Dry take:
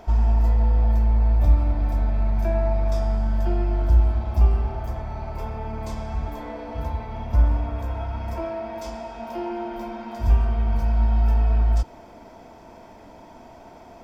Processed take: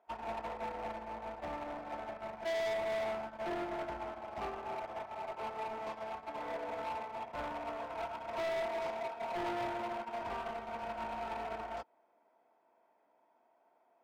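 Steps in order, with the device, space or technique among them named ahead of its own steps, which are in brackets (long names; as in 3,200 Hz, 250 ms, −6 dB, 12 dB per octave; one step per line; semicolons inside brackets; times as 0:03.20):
walkie-talkie (band-pass filter 500–2,200 Hz; hard clipping −37 dBFS, distortion −8 dB; noise gate −38 dBFS, range −38 dB)
level +14.5 dB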